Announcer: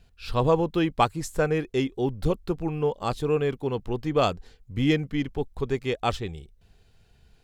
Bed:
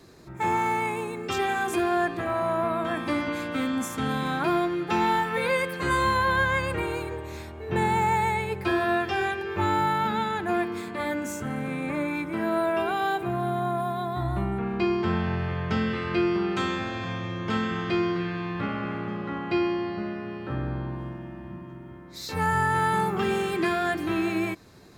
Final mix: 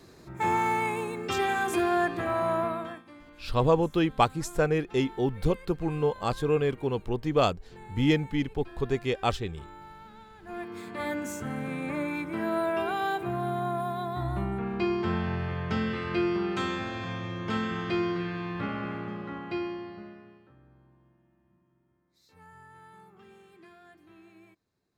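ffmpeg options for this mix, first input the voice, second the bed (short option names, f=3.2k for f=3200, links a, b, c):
-filter_complex "[0:a]adelay=3200,volume=-1dB[a];[1:a]volume=19.5dB,afade=t=out:st=2.55:d=0.48:silence=0.0749894,afade=t=in:st=10.39:d=0.67:silence=0.0944061,afade=t=out:st=18.83:d=1.7:silence=0.0530884[b];[a][b]amix=inputs=2:normalize=0"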